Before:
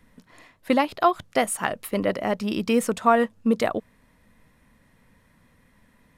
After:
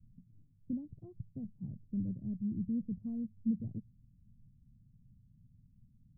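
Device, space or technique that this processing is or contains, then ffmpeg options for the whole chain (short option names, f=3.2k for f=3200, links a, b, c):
the neighbour's flat through the wall: -af "lowpass=f=180:w=0.5412,lowpass=f=180:w=1.3066,equalizer=f=120:t=o:w=0.43:g=8,volume=-2dB"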